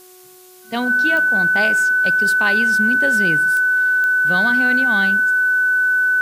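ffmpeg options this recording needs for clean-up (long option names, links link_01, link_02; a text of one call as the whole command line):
ffmpeg -i in.wav -af "adeclick=threshold=4,bandreject=frequency=367.7:width_type=h:width=4,bandreject=frequency=735.4:width_type=h:width=4,bandreject=frequency=1103.1:width_type=h:width=4,bandreject=frequency=1470.8:width_type=h:width=4,bandreject=frequency=1500:width=30,agate=range=-21dB:threshold=-36dB" out.wav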